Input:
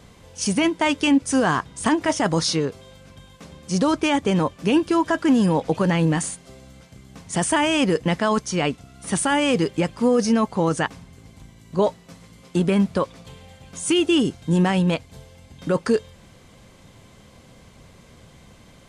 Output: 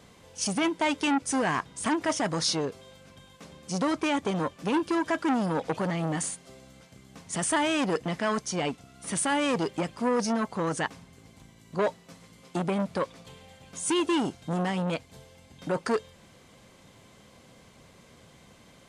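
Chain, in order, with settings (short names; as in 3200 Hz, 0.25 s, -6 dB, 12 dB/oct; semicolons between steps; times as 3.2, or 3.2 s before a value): low shelf 100 Hz -11.5 dB; core saturation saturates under 1000 Hz; gain -3.5 dB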